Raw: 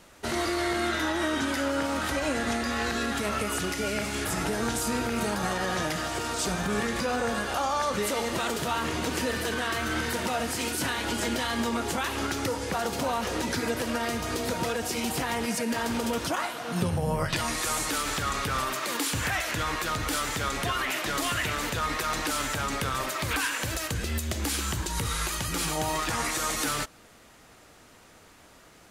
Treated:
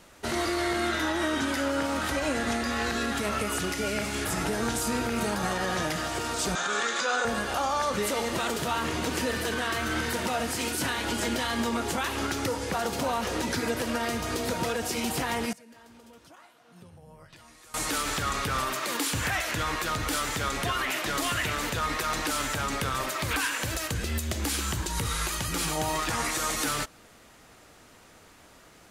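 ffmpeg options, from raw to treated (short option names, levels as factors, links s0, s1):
-filter_complex "[0:a]asettb=1/sr,asplit=3[s0][s1][s2];[s0]atrim=end=6.554[s3];[s1]atrim=start=6.55:end=7.25,asetpts=PTS-STARTPTS,afade=t=in:d=0.004:c=qsin,afade=t=out:st=0.696:d=0.004:c=qsin,highpass=460,equalizer=f=1400:t=q:w=4:g=9,equalizer=f=3600:t=q:w=4:g=8,equalizer=f=6800:t=q:w=4:g=9,lowpass=f=8500:w=0.5412,lowpass=f=8500:w=1.3066[s4];[s2]atrim=start=7.246[s5];[s3][s4]acrossfade=d=0.004:c1=hsin:c2=qsin[s6];[s6][s5]acrossfade=d=0.004:c1=qsin:c2=hsin,asplit=3[s7][s8][s9];[s7]atrim=end=15.53,asetpts=PTS-STARTPTS,afade=t=out:st=15.34:d=0.19:c=log:silence=0.0668344[s10];[s8]atrim=start=15.53:end=17.74,asetpts=PTS-STARTPTS,volume=0.0668[s11];[s9]atrim=start=17.74,asetpts=PTS-STARTPTS,afade=t=in:d=0.19:c=log:silence=0.0668344[s12];[s10][s11][s12]concat=n=3:v=0:a=1"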